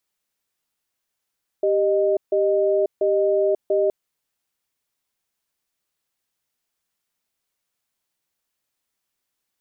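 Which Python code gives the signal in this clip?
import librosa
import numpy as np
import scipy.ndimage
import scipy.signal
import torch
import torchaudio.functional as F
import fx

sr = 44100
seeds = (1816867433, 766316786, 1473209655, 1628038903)

y = fx.cadence(sr, length_s=2.27, low_hz=393.0, high_hz=617.0, on_s=0.54, off_s=0.15, level_db=-19.0)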